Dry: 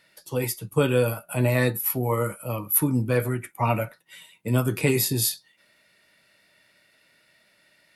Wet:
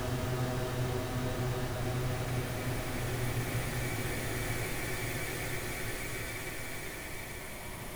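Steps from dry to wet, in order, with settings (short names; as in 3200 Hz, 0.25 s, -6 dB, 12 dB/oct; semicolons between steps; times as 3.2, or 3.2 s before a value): local time reversal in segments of 56 ms; compressor, threshold -26 dBFS, peak gain reduction 10.5 dB; Schmitt trigger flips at -39 dBFS; Paulstretch 37×, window 0.25 s, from 3.31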